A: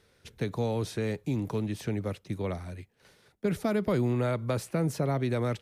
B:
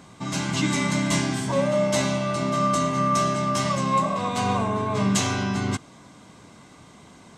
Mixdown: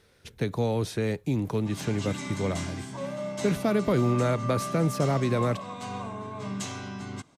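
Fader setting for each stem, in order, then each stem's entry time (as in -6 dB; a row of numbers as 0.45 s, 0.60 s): +3.0 dB, -12.0 dB; 0.00 s, 1.45 s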